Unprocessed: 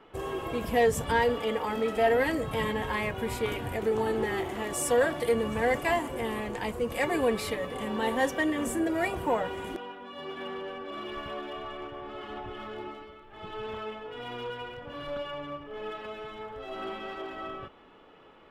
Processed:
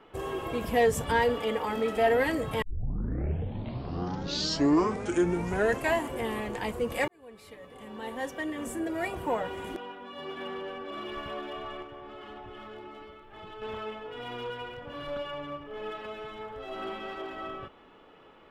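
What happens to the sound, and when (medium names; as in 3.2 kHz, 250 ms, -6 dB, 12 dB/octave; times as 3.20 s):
2.62 s: tape start 3.43 s
7.08–9.96 s: fade in
11.82–13.62 s: compression 4:1, threshold -41 dBFS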